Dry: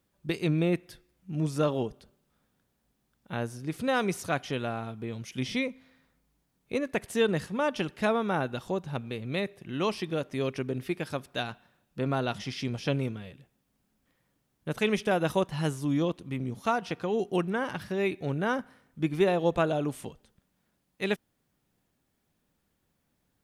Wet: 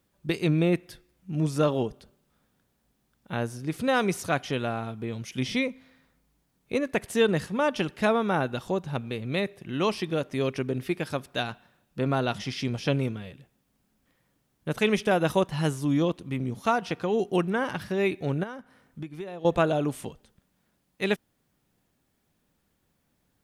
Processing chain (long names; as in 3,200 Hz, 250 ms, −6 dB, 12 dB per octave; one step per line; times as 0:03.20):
0:18.43–0:19.45: downward compressor 6 to 1, threshold −39 dBFS, peak gain reduction 18.5 dB
level +3 dB